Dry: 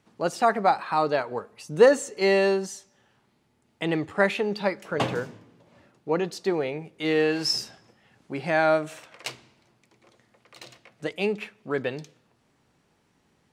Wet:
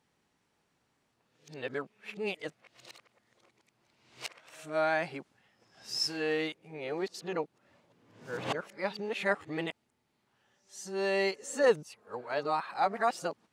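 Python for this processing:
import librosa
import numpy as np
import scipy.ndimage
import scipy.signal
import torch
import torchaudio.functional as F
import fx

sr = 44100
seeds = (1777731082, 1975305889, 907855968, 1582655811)

y = x[::-1].copy()
y = fx.low_shelf(y, sr, hz=470.0, db=-6.0)
y = y * 10.0 ** (-6.0 / 20.0)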